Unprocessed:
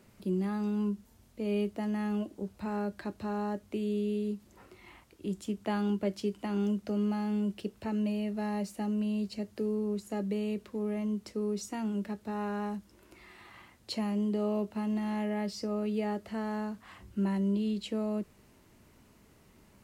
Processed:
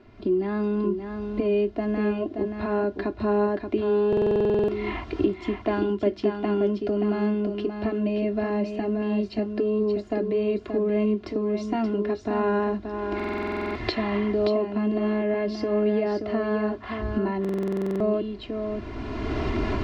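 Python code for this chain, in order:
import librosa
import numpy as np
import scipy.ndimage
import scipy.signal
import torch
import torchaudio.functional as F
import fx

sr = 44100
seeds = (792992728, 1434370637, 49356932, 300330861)

p1 = fx.recorder_agc(x, sr, target_db=-24.0, rise_db_per_s=21.0, max_gain_db=30)
p2 = scipy.signal.sosfilt(scipy.signal.butter(4, 4500.0, 'lowpass', fs=sr, output='sos'), p1)
p3 = fx.high_shelf(p2, sr, hz=2000.0, db=-8.5)
p4 = p3 + 0.8 * np.pad(p3, (int(2.9 * sr / 1000.0), 0))[:len(p3)]
p5 = p4 + fx.echo_single(p4, sr, ms=578, db=-6.5, dry=0)
p6 = fx.buffer_glitch(p5, sr, at_s=(4.08, 13.15, 17.4), block=2048, repeats=12)
y = F.gain(torch.from_numpy(p6), 7.0).numpy()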